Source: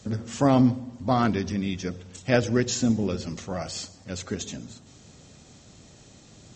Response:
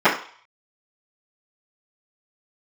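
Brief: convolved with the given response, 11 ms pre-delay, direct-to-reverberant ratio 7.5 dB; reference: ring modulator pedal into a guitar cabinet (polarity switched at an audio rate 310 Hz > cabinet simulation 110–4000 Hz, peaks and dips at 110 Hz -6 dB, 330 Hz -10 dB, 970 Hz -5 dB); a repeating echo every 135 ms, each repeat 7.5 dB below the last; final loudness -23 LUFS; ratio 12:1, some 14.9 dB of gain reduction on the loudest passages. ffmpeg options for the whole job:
-filter_complex "[0:a]acompressor=threshold=0.0316:ratio=12,aecho=1:1:135|270|405|540|675:0.422|0.177|0.0744|0.0312|0.0131,asplit=2[s0][s1];[1:a]atrim=start_sample=2205,adelay=11[s2];[s1][s2]afir=irnorm=-1:irlink=0,volume=0.0266[s3];[s0][s3]amix=inputs=2:normalize=0,aeval=exprs='val(0)*sgn(sin(2*PI*310*n/s))':c=same,highpass=110,equalizer=f=110:t=q:w=4:g=-6,equalizer=f=330:t=q:w=4:g=-10,equalizer=f=970:t=q:w=4:g=-5,lowpass=f=4000:w=0.5412,lowpass=f=4000:w=1.3066,volume=5.31"

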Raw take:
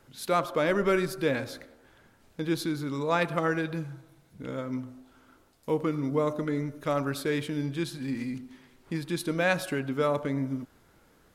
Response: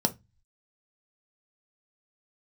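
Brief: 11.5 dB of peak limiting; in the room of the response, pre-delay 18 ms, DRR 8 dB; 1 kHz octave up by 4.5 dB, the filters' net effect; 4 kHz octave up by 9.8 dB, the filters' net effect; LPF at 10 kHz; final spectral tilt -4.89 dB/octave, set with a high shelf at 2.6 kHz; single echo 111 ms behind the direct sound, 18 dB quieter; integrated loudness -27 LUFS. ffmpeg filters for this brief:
-filter_complex "[0:a]lowpass=10000,equalizer=f=1000:t=o:g=4,highshelf=f=2600:g=8.5,equalizer=f=4000:t=o:g=4.5,alimiter=limit=0.15:level=0:latency=1,aecho=1:1:111:0.126,asplit=2[s0][s1];[1:a]atrim=start_sample=2205,adelay=18[s2];[s1][s2]afir=irnorm=-1:irlink=0,volume=0.15[s3];[s0][s3]amix=inputs=2:normalize=0,volume=1.12"

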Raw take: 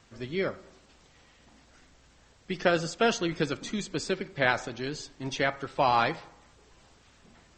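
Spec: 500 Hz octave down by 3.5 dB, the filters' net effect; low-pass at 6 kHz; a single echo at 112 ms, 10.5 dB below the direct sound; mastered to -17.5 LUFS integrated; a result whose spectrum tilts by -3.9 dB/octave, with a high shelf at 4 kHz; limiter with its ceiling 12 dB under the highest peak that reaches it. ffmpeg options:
-af "lowpass=6000,equalizer=f=500:t=o:g=-4.5,highshelf=f=4000:g=5,alimiter=limit=0.106:level=0:latency=1,aecho=1:1:112:0.299,volume=6.31"

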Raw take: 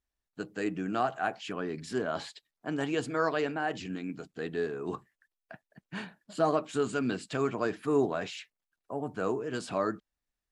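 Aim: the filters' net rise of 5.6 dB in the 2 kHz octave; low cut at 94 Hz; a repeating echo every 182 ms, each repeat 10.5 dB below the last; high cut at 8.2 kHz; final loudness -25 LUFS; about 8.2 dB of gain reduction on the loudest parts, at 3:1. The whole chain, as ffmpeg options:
-af "highpass=94,lowpass=8200,equalizer=f=2000:t=o:g=8,acompressor=threshold=0.0251:ratio=3,aecho=1:1:182|364|546:0.299|0.0896|0.0269,volume=3.76"

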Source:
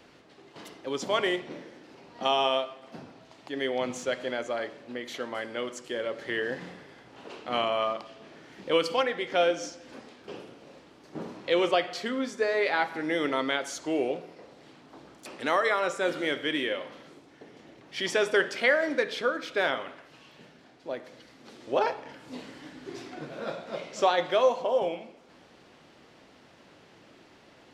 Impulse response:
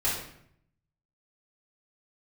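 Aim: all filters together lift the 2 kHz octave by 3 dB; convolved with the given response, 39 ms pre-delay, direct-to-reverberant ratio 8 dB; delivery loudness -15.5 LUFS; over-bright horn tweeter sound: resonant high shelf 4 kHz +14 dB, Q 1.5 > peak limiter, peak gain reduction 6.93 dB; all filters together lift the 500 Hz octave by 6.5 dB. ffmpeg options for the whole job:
-filter_complex "[0:a]equalizer=f=500:t=o:g=7.5,equalizer=f=2000:t=o:g=6,asplit=2[s0][s1];[1:a]atrim=start_sample=2205,adelay=39[s2];[s1][s2]afir=irnorm=-1:irlink=0,volume=0.133[s3];[s0][s3]amix=inputs=2:normalize=0,highshelf=f=4000:t=q:w=1.5:g=14,volume=2.99,alimiter=limit=0.708:level=0:latency=1"

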